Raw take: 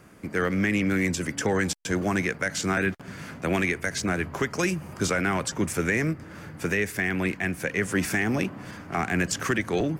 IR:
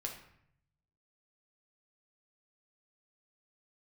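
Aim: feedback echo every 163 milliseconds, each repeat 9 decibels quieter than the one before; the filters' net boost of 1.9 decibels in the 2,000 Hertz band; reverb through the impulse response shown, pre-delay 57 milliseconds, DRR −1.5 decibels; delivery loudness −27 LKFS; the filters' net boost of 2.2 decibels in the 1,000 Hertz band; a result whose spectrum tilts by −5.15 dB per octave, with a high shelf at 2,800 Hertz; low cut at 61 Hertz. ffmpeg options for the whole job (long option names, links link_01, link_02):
-filter_complex "[0:a]highpass=61,equalizer=frequency=1000:width_type=o:gain=3,equalizer=frequency=2000:width_type=o:gain=4.5,highshelf=frequency=2800:gain=-8.5,aecho=1:1:163|326|489|652:0.355|0.124|0.0435|0.0152,asplit=2[link_01][link_02];[1:a]atrim=start_sample=2205,adelay=57[link_03];[link_02][link_03]afir=irnorm=-1:irlink=0,volume=2dB[link_04];[link_01][link_04]amix=inputs=2:normalize=0,volume=-5dB"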